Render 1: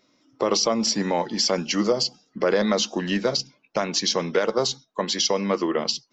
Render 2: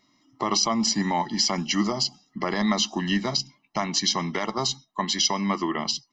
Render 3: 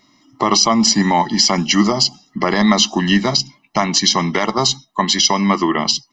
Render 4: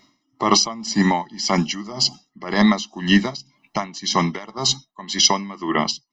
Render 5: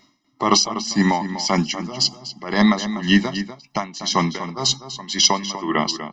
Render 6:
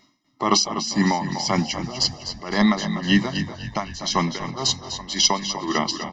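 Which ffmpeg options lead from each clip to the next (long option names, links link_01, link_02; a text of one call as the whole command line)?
ffmpeg -i in.wav -af "aecho=1:1:1:0.86,volume=-2.5dB" out.wav
ffmpeg -i in.wav -af "alimiter=level_in=11dB:limit=-1dB:release=50:level=0:latency=1,volume=-1dB" out.wav
ffmpeg -i in.wav -af "aeval=exprs='val(0)*pow(10,-20*(0.5-0.5*cos(2*PI*1.9*n/s))/20)':channel_layout=same" out.wav
ffmpeg -i in.wav -filter_complex "[0:a]asplit=2[link_01][link_02];[link_02]adelay=244.9,volume=-11dB,highshelf=frequency=4000:gain=-5.51[link_03];[link_01][link_03]amix=inputs=2:normalize=0" out.wav
ffmpeg -i in.wav -filter_complex "[0:a]asplit=8[link_01][link_02][link_03][link_04][link_05][link_06][link_07][link_08];[link_02]adelay=255,afreqshift=-41,volume=-12.5dB[link_09];[link_03]adelay=510,afreqshift=-82,volume=-17.1dB[link_10];[link_04]adelay=765,afreqshift=-123,volume=-21.7dB[link_11];[link_05]adelay=1020,afreqshift=-164,volume=-26.2dB[link_12];[link_06]adelay=1275,afreqshift=-205,volume=-30.8dB[link_13];[link_07]adelay=1530,afreqshift=-246,volume=-35.4dB[link_14];[link_08]adelay=1785,afreqshift=-287,volume=-40dB[link_15];[link_01][link_09][link_10][link_11][link_12][link_13][link_14][link_15]amix=inputs=8:normalize=0,volume=-2.5dB" out.wav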